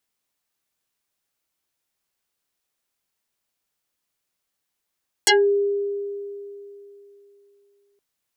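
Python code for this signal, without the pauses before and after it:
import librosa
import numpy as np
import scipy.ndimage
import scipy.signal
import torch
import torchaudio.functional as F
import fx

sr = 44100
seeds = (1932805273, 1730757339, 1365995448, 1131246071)

y = fx.fm2(sr, length_s=2.72, level_db=-11.5, carrier_hz=403.0, ratio=3.07, index=9.0, index_s=0.19, decay_s=3.13, shape='exponential')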